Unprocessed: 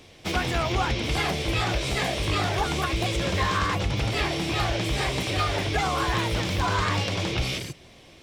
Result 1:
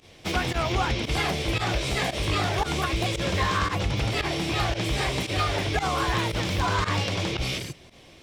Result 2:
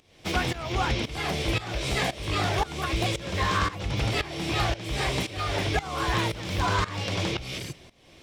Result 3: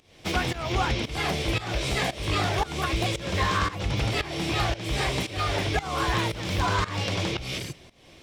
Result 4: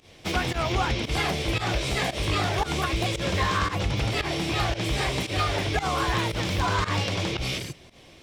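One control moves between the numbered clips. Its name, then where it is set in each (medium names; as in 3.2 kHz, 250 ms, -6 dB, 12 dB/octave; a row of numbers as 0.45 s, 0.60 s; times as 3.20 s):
volume shaper, release: 70 ms, 466 ms, 314 ms, 104 ms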